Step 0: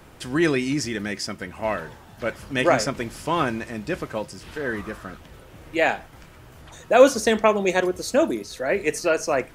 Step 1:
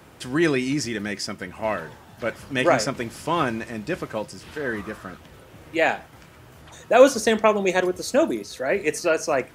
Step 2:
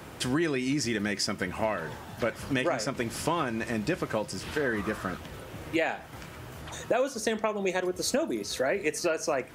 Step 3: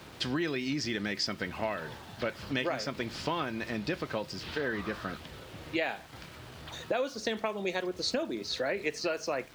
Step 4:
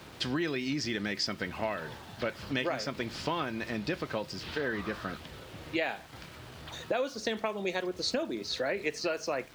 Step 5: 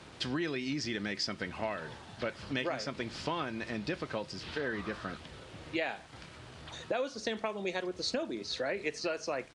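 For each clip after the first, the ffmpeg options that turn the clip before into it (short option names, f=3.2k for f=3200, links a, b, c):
-af "highpass=73"
-af "acompressor=threshold=-29dB:ratio=10,volume=4.5dB"
-af "lowpass=f=4.3k:t=q:w=2.2,aeval=exprs='val(0)*gte(abs(val(0)),0.00473)':c=same,volume=-4.5dB"
-af anull
-af "aresample=22050,aresample=44100,volume=-2.5dB"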